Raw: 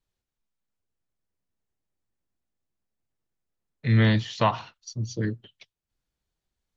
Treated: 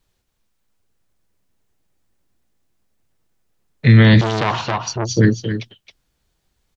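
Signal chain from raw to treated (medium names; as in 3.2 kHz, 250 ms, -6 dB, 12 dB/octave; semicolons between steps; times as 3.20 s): delay 270 ms -9.5 dB; loudness maximiser +15.5 dB; 4.21–5.09 s: transformer saturation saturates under 1.3 kHz; trim -1 dB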